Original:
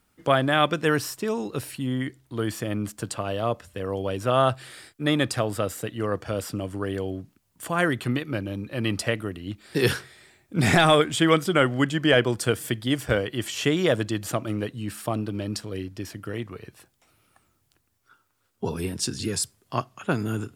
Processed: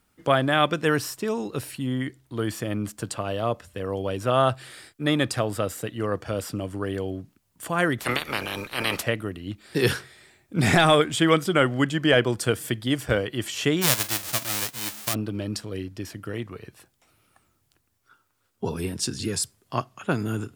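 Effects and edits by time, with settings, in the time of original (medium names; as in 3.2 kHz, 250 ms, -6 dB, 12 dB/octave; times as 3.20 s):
7.98–9.02 s: spectral peaks clipped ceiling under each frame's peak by 29 dB
13.81–15.13 s: formants flattened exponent 0.1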